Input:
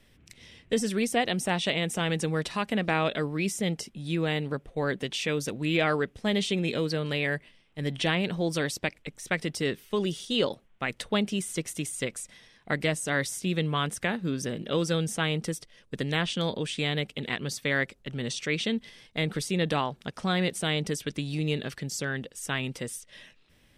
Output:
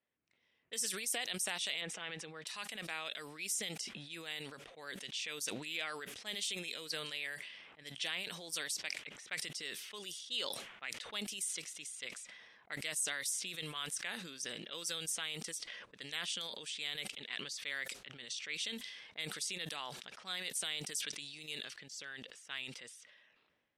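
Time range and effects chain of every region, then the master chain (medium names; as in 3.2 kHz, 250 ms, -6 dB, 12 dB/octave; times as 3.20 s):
1.81–2.47 s: band-pass 110–2500 Hz + comb 6.1 ms, depth 41%
whole clip: level-controlled noise filter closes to 920 Hz, open at -24.5 dBFS; differentiator; decay stretcher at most 39 dB/s; trim -1 dB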